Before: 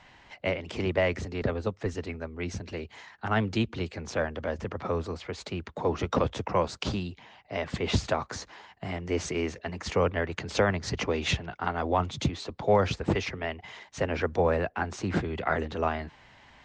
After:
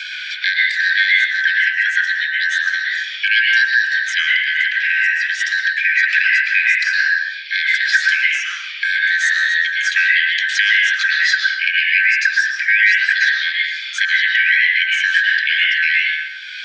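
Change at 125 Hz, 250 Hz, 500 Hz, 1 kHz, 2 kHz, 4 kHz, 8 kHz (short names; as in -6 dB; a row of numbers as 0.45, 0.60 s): under -40 dB, under -40 dB, under -40 dB, n/a, +26.0 dB, +19.0 dB, +10.5 dB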